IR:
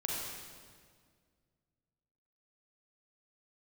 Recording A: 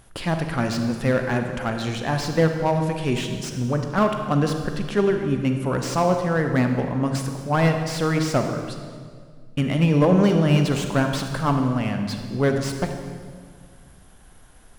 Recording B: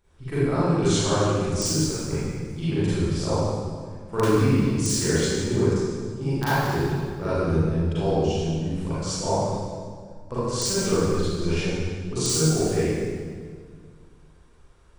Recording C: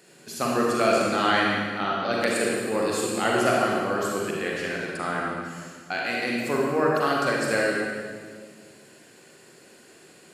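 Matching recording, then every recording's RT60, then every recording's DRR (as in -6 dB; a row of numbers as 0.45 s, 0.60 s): C; 1.9 s, 1.9 s, 1.9 s; 5.0 dB, -13.0 dB, -3.5 dB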